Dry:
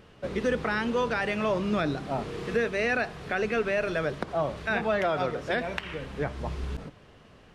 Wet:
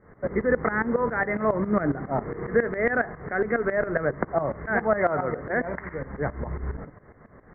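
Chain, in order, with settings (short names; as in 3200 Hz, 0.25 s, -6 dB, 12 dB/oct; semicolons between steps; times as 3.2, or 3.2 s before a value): Chebyshev low-pass 2100 Hz, order 8; tremolo saw up 7.3 Hz, depth 85%; gain +7.5 dB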